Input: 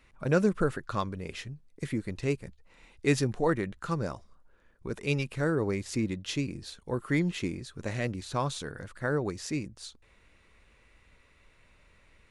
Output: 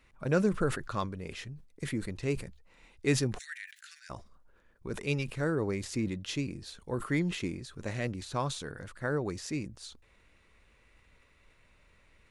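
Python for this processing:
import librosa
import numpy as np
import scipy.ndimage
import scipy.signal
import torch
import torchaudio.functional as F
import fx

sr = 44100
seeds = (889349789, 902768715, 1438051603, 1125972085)

y = fx.steep_highpass(x, sr, hz=1600.0, slope=72, at=(3.37, 4.09), fade=0.02)
y = fx.sustainer(y, sr, db_per_s=110.0)
y = F.gain(torch.from_numpy(y), -2.5).numpy()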